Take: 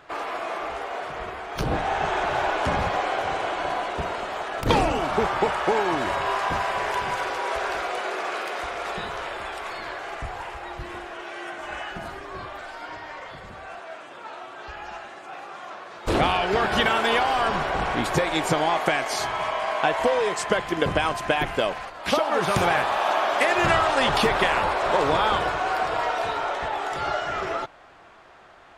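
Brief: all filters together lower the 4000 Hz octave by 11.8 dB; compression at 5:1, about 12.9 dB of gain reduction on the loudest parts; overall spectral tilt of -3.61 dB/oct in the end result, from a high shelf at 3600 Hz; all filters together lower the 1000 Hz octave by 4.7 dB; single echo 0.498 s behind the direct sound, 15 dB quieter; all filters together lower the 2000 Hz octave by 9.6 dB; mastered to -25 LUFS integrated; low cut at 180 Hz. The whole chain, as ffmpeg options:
-af "highpass=180,equalizer=f=1k:t=o:g=-3.5,equalizer=f=2k:t=o:g=-8,highshelf=f=3.6k:g=-7,equalizer=f=4k:t=o:g=-8,acompressor=threshold=-35dB:ratio=5,aecho=1:1:498:0.178,volume=13.5dB"

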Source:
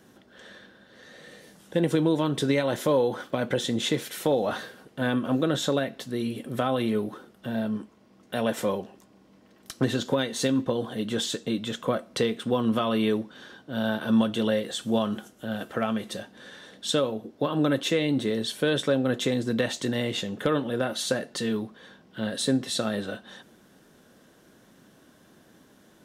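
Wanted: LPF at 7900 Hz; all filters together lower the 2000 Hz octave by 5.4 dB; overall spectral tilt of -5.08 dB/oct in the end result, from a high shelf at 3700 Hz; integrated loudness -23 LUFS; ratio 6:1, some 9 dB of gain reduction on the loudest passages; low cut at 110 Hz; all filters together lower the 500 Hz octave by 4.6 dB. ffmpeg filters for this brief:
-af "highpass=110,lowpass=7.9k,equalizer=f=500:t=o:g=-5,equalizer=f=2k:t=o:g=-6,highshelf=f=3.7k:g=-4.5,acompressor=threshold=-28dB:ratio=6,volume=11dB"

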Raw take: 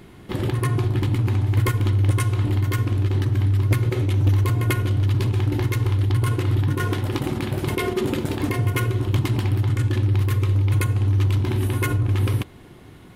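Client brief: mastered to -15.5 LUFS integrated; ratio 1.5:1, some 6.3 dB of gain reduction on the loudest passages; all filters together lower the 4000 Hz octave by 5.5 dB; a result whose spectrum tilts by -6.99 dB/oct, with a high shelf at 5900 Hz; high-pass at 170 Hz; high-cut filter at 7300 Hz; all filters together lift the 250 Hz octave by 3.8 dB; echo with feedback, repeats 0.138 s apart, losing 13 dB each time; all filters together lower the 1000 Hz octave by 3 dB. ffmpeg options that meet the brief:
-af "highpass=170,lowpass=7.3k,equalizer=f=250:t=o:g=6.5,equalizer=f=1k:t=o:g=-3.5,equalizer=f=4k:t=o:g=-6,highshelf=f=5.9k:g=-3.5,acompressor=threshold=-36dB:ratio=1.5,aecho=1:1:138|276|414:0.224|0.0493|0.0108,volume=15.5dB"

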